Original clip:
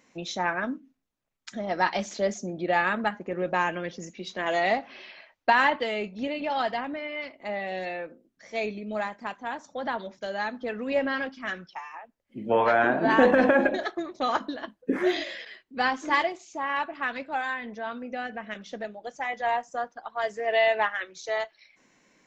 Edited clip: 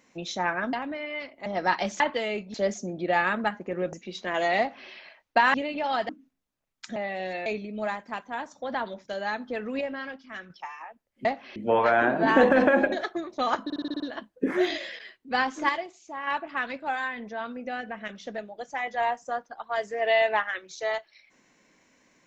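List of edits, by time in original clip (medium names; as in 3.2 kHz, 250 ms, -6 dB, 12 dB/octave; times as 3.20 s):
0.73–1.60 s: swap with 6.75–7.48 s
3.53–4.05 s: delete
4.71–5.02 s: copy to 12.38 s
5.66–6.20 s: move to 2.14 s
7.98–8.59 s: delete
10.94–11.63 s: gain -7 dB
14.46 s: stutter 0.06 s, 7 plays
16.15–16.73 s: gain -5.5 dB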